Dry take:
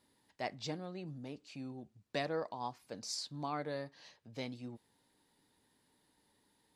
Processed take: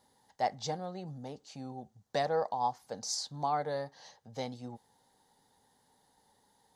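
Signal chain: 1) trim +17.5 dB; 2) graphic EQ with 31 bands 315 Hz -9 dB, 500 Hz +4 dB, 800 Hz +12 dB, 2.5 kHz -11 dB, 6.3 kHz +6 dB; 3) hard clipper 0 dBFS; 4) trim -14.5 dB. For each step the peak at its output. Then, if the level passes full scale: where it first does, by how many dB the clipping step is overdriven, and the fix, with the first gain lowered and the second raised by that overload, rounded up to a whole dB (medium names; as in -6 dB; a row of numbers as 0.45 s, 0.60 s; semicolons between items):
-3.0 dBFS, -3.0 dBFS, -3.0 dBFS, -17.5 dBFS; nothing clips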